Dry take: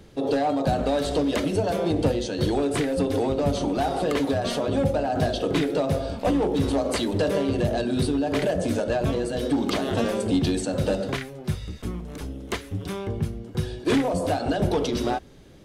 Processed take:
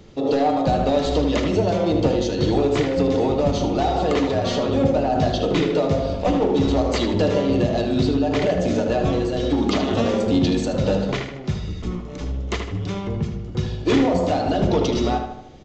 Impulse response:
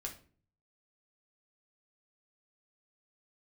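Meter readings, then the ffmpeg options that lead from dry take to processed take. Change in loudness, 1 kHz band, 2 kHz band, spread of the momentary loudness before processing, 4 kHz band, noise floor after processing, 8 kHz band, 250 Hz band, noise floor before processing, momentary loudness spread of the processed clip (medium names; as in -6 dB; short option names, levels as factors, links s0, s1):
+4.0 dB, +4.5 dB, +2.0 dB, 8 LU, +3.5 dB, -33 dBFS, -0.5 dB, +4.0 dB, -42 dBFS, 8 LU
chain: -filter_complex "[0:a]bandreject=f=1600:w=10,asplit=2[s0][s1];[s1]adelay=77,lowpass=f=3600:p=1,volume=0.531,asplit=2[s2][s3];[s3]adelay=77,lowpass=f=3600:p=1,volume=0.52,asplit=2[s4][s5];[s5]adelay=77,lowpass=f=3600:p=1,volume=0.52,asplit=2[s6][s7];[s7]adelay=77,lowpass=f=3600:p=1,volume=0.52,asplit=2[s8][s9];[s9]adelay=77,lowpass=f=3600:p=1,volume=0.52,asplit=2[s10][s11];[s11]adelay=77,lowpass=f=3600:p=1,volume=0.52,asplit=2[s12][s13];[s13]adelay=77,lowpass=f=3600:p=1,volume=0.52[s14];[s0][s2][s4][s6][s8][s10][s12][s14]amix=inputs=8:normalize=0,asplit=2[s15][s16];[1:a]atrim=start_sample=2205[s17];[s16][s17]afir=irnorm=-1:irlink=0,volume=0.562[s18];[s15][s18]amix=inputs=2:normalize=0,aresample=16000,aresample=44100"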